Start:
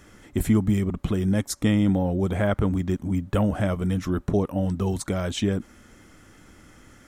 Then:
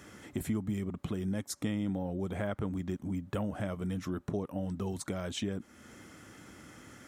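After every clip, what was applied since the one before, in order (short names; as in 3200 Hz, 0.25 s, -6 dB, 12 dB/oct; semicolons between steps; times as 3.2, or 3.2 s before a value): HPF 96 Hz; compressor 2:1, threshold -40 dBFS, peak gain reduction 13 dB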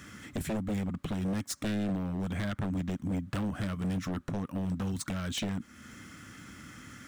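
median filter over 3 samples; band shelf 560 Hz -9.5 dB; wavefolder -31.5 dBFS; gain +5 dB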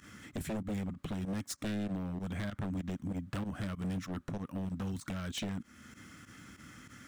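pump 96 bpm, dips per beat 2, -15 dB, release 62 ms; gain -4 dB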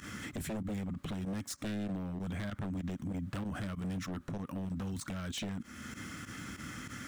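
limiter -40.5 dBFS, peak gain reduction 10 dB; gain +8.5 dB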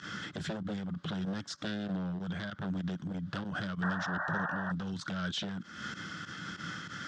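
painted sound noise, 3.82–4.72, 550–1900 Hz -41 dBFS; speaker cabinet 130–6000 Hz, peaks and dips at 170 Hz +6 dB, 250 Hz -9 dB, 1500 Hz +8 dB, 2300 Hz -7 dB, 3400 Hz +7 dB, 4800 Hz +5 dB; noise-modulated level, depth 50%; gain +4.5 dB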